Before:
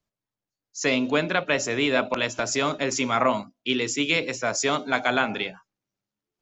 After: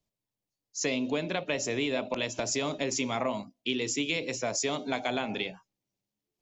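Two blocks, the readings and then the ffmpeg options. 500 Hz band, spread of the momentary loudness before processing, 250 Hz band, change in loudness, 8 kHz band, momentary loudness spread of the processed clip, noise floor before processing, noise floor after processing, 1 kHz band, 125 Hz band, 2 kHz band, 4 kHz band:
-6.0 dB, 5 LU, -5.5 dB, -6.5 dB, n/a, 4 LU, under -85 dBFS, under -85 dBFS, -9.5 dB, -5.0 dB, -9.5 dB, -5.5 dB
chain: -af "equalizer=f=1.4k:w=1.9:g=-11,acompressor=threshold=-28dB:ratio=3"

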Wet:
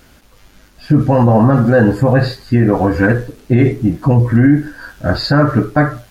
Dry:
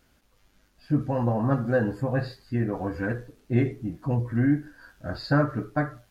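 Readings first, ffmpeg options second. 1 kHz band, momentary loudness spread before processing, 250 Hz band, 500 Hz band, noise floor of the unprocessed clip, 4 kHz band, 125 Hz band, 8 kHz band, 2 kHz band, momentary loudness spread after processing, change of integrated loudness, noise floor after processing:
+14.0 dB, 7 LU, +14.0 dB, +13.5 dB, -65 dBFS, +17.5 dB, +14.0 dB, n/a, +13.5 dB, 6 LU, +14.0 dB, -47 dBFS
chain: -af "alimiter=level_in=18.5dB:limit=-1dB:release=50:level=0:latency=1,volume=-1dB"

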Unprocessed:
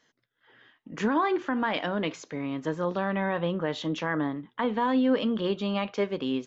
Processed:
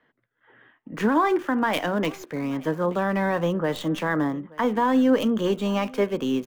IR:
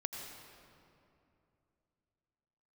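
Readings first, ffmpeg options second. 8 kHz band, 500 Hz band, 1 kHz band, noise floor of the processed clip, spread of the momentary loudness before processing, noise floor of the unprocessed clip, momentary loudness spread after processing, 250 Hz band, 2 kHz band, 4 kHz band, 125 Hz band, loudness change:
n/a, +4.5 dB, +4.5 dB, -73 dBFS, 7 LU, -76 dBFS, 7 LU, +4.5 dB, +3.5 dB, +1.5 dB, +4.5 dB, +4.5 dB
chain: -filter_complex "[0:a]acrossover=split=210|500|2600[a][b][c][d];[d]acrusher=bits=6:dc=4:mix=0:aa=0.000001[e];[a][b][c][e]amix=inputs=4:normalize=0,aecho=1:1:879:0.0708,volume=4.5dB"

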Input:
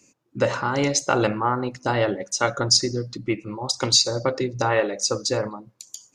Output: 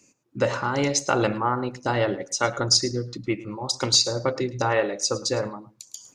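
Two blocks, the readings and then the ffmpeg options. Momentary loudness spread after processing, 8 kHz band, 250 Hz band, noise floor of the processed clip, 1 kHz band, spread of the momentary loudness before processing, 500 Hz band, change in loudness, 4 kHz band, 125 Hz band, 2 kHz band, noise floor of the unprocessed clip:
10 LU, -1.5 dB, -1.5 dB, -61 dBFS, -1.5 dB, 11 LU, -1.5 dB, -1.5 dB, -1.5 dB, -1.0 dB, -1.5 dB, -63 dBFS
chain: -af "areverse,acompressor=mode=upward:threshold=-41dB:ratio=2.5,areverse,aecho=1:1:108:0.126,volume=-1.5dB"

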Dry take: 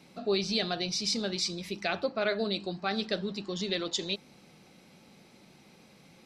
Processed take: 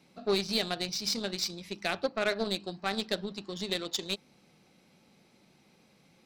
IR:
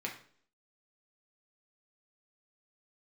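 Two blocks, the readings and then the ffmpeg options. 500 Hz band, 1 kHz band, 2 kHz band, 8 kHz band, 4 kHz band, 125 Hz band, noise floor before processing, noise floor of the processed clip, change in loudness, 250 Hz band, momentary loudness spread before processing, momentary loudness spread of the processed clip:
-1.0 dB, -0.5 dB, 0.0 dB, -1.0 dB, -0.5 dB, -3.0 dB, -58 dBFS, -64 dBFS, -1.0 dB, -2.5 dB, 5 LU, 6 LU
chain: -af "aeval=exprs='0.168*(cos(1*acos(clip(val(0)/0.168,-1,1)))-cos(1*PI/2))+0.0119*(cos(4*acos(clip(val(0)/0.168,-1,1)))-cos(4*PI/2))+0.00376*(cos(5*acos(clip(val(0)/0.168,-1,1)))-cos(5*PI/2))+0.00668*(cos(6*acos(clip(val(0)/0.168,-1,1)))-cos(6*PI/2))+0.015*(cos(7*acos(clip(val(0)/0.168,-1,1)))-cos(7*PI/2))':c=same"

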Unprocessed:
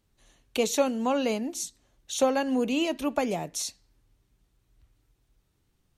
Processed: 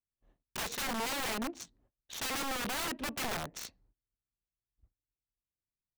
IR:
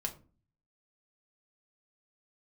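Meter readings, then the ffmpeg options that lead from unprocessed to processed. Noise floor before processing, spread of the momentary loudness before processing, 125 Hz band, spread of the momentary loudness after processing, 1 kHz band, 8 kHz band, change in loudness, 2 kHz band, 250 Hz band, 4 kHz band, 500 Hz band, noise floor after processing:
-72 dBFS, 10 LU, -4.5 dB, 12 LU, -6.0 dB, -6.0 dB, -7.5 dB, -0.5 dB, -13.5 dB, -2.5 dB, -16.0 dB, under -85 dBFS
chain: -af "agate=range=-26dB:threshold=-59dB:ratio=16:detection=peak,adynamicsmooth=sensitivity=6.5:basefreq=1.1k,aeval=exprs='(mod(21.1*val(0)+1,2)-1)/21.1':c=same,volume=-4dB"

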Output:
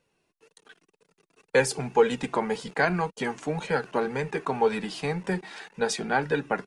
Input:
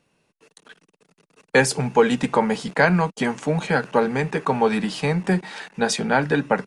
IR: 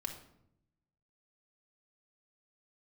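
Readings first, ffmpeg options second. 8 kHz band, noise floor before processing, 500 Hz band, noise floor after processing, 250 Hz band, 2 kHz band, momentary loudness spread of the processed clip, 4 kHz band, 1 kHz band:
-6.0 dB, -73 dBFS, -4.5 dB, -80 dBFS, -9.0 dB, -6.5 dB, 7 LU, -6.0 dB, -5.5 dB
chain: -af "flanger=delay=1.9:depth=1.1:regen=39:speed=1.9:shape=triangular,volume=-2dB"

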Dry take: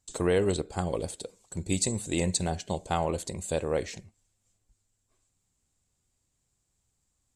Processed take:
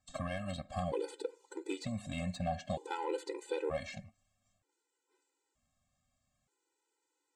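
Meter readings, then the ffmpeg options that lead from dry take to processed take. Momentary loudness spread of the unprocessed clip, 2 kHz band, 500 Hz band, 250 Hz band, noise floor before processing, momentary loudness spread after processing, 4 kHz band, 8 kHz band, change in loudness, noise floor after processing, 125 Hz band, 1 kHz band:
13 LU, -6.5 dB, -8.5 dB, -9.0 dB, -78 dBFS, 6 LU, -10.5 dB, -20.5 dB, -9.5 dB, -85 dBFS, -9.5 dB, -5.5 dB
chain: -filter_complex "[0:a]acrossover=split=1900|4000[a][b][c];[a]acompressor=threshold=-32dB:ratio=4[d];[b]acompressor=threshold=-43dB:ratio=4[e];[c]acompressor=threshold=-48dB:ratio=4[f];[d][e][f]amix=inputs=3:normalize=0,asplit=2[g][h];[h]highpass=f=720:p=1,volume=14dB,asoftclip=type=tanh:threshold=-19.5dB[i];[g][i]amix=inputs=2:normalize=0,lowpass=f=1.2k:p=1,volume=-6dB,afftfilt=real='re*gt(sin(2*PI*0.54*pts/sr)*(1-2*mod(floor(b*sr/1024/260),2)),0)':imag='im*gt(sin(2*PI*0.54*pts/sr)*(1-2*mod(floor(b*sr/1024/260),2)),0)':win_size=1024:overlap=0.75,volume=1dB"

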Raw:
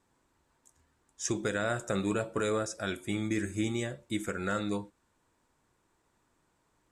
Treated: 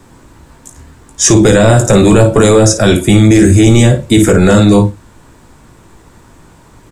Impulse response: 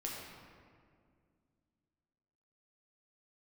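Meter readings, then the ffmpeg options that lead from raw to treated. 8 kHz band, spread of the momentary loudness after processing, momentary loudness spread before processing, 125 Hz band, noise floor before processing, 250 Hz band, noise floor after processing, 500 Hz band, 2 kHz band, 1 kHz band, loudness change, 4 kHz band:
+26.0 dB, 3 LU, 5 LU, +30.0 dB, -74 dBFS, +25.5 dB, -42 dBFS, +24.5 dB, +18.5 dB, +20.5 dB, +25.5 dB, +24.0 dB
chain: -filter_complex "[0:a]lowshelf=f=240:g=11,bandreject=f=50:t=h:w=6,bandreject=f=100:t=h:w=6,aecho=1:1:18|55:0.398|0.251,acrossover=split=130|1000|2900[a][b][c][d];[c]acompressor=threshold=-50dB:ratio=6[e];[a][b][e][d]amix=inputs=4:normalize=0,apsyclip=28.5dB,volume=-1.5dB"

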